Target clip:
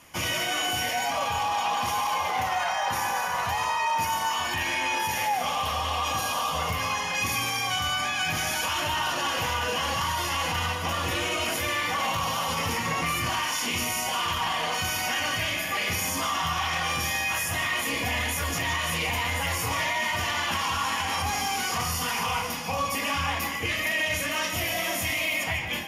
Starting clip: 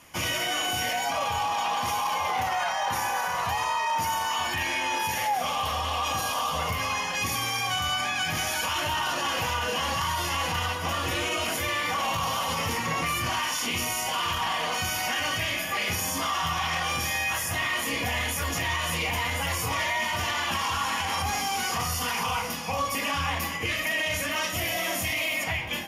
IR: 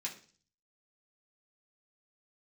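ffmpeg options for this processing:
-filter_complex "[0:a]asplit=2[s0][s1];[1:a]atrim=start_sample=2205,adelay=144[s2];[s1][s2]afir=irnorm=-1:irlink=0,volume=0.335[s3];[s0][s3]amix=inputs=2:normalize=0"

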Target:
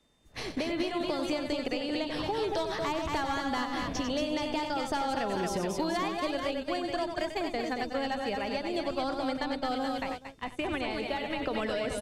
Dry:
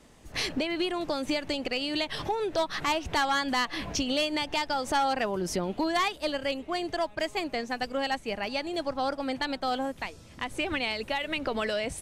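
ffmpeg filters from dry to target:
-filter_complex "[0:a]aecho=1:1:92|227|427:0.376|0.501|0.335,acrossover=split=420|1300[s0][s1][s2];[s0]acompressor=threshold=0.0251:ratio=4[s3];[s1]acompressor=threshold=0.0224:ratio=4[s4];[s2]acompressor=threshold=0.0112:ratio=4[s5];[s3][s4][s5]amix=inputs=3:normalize=0,aeval=exprs='val(0)+0.00112*sin(2*PI*3600*n/s)':c=same,agate=range=0.2:threshold=0.0178:ratio=16:detection=peak"

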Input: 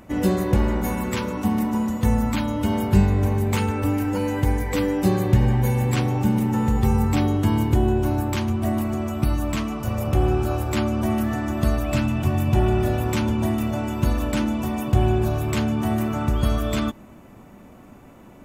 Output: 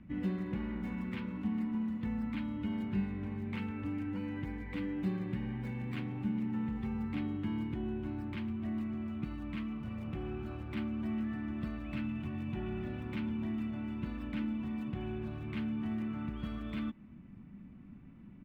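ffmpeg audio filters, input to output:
-filter_complex "[0:a]firequalizer=gain_entry='entry(120,0);entry(180,6);entry(410,-14);entry(610,-19);entry(980,-14);entry(2100,-6);entry(6400,-20);entry(10000,-15)':delay=0.05:min_phase=1,acrossover=split=280|1200|4400[s0][s1][s2][s3];[s0]acompressor=threshold=0.0158:ratio=5[s4];[s3]acrusher=samples=26:mix=1:aa=0.000001:lfo=1:lforange=26:lforate=3.5[s5];[s4][s1][s2][s5]amix=inputs=4:normalize=0,volume=0.473"

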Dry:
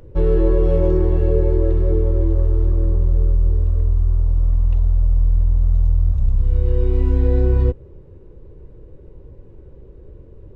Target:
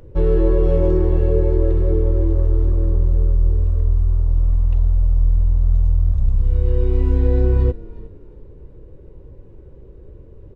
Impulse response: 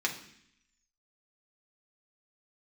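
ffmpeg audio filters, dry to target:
-filter_complex "[0:a]asplit=4[s0][s1][s2][s3];[s1]adelay=362,afreqshift=-39,volume=0.112[s4];[s2]adelay=724,afreqshift=-78,volume=0.0372[s5];[s3]adelay=1086,afreqshift=-117,volume=0.0122[s6];[s0][s4][s5][s6]amix=inputs=4:normalize=0"

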